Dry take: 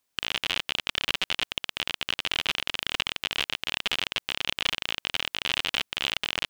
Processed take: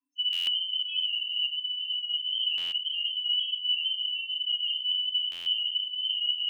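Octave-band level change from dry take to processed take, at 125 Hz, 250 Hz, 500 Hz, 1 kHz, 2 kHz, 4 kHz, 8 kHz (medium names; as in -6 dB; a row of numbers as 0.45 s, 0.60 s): under -25 dB, under -25 dB, under -25 dB, under -25 dB, -11.0 dB, +3.5 dB, under -20 dB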